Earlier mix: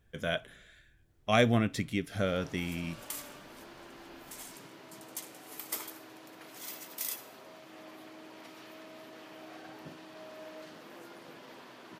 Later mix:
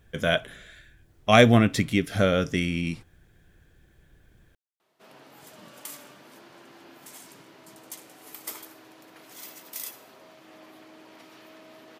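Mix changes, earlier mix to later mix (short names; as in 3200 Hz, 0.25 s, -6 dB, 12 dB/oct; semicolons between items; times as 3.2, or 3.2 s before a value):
speech +9.0 dB; background: entry +2.75 s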